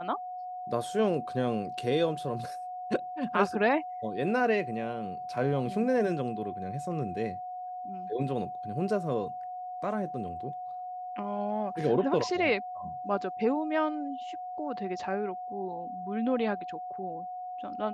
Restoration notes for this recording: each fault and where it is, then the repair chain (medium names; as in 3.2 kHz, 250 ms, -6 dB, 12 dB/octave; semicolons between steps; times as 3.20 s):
whine 730 Hz -36 dBFS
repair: band-stop 730 Hz, Q 30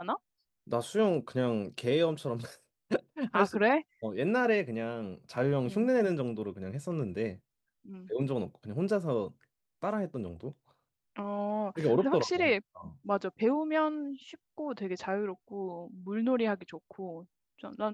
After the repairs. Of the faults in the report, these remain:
nothing left